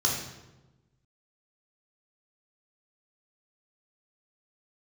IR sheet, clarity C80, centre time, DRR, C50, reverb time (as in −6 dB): 6.0 dB, 45 ms, −2.5 dB, 3.0 dB, 1.1 s